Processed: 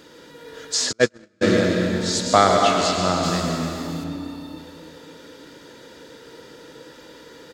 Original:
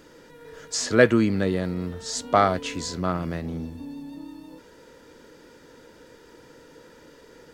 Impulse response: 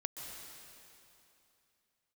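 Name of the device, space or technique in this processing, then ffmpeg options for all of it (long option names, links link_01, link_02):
PA in a hall: -filter_complex "[0:a]highpass=frequency=110:poles=1,equalizer=frequency=3700:width_type=o:width=0.67:gain=7,aecho=1:1:110:0.266[link_01];[1:a]atrim=start_sample=2205[link_02];[link_01][link_02]afir=irnorm=-1:irlink=0,asplit=3[link_03][link_04][link_05];[link_03]afade=type=out:start_time=0.91:duration=0.02[link_06];[link_04]agate=range=-46dB:threshold=-14dB:ratio=16:detection=peak,afade=type=in:start_time=0.91:duration=0.02,afade=type=out:start_time=1.41:duration=0.02[link_07];[link_05]afade=type=in:start_time=1.41:duration=0.02[link_08];[link_06][link_07][link_08]amix=inputs=3:normalize=0,asettb=1/sr,asplit=3[link_09][link_10][link_11];[link_09]atrim=end=3.234[link_12];[link_10]atrim=start=3.23:end=4.04,asetpts=PTS-STARTPTS,afade=type=in:duration=0.004:curve=qsin,afade=type=out:start_time=0.806:duration=0.004:curve=qsin,aemphasis=mode=production:type=cd[link_13];[link_11]atrim=start=4.036[link_14];[link_12][link_13]acrossfade=duration=0.004:curve1=hsin:curve2=qsin[link_15];[link_15][link_14]acrossfade=duration=0.004:curve1=qsin:curve2=hsin,volume=6dB"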